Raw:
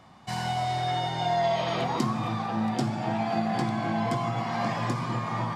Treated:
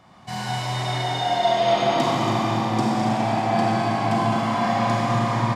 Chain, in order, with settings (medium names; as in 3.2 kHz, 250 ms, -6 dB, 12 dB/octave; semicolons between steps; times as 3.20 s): loudspeakers at several distances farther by 72 m -9 dB, 95 m -10 dB; Schroeder reverb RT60 3.7 s, combs from 31 ms, DRR -5 dB